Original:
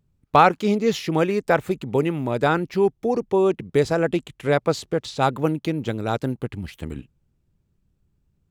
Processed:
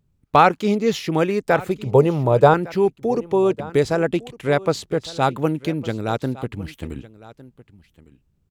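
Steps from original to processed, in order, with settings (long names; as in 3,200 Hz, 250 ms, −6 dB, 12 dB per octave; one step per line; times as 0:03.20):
0:01.85–0:02.54: graphic EQ with 10 bands 125 Hz +9 dB, 250 Hz −6 dB, 500 Hz +9 dB, 1,000 Hz +6 dB, 2,000 Hz −7 dB
single-tap delay 1,157 ms −19.5 dB
level +1 dB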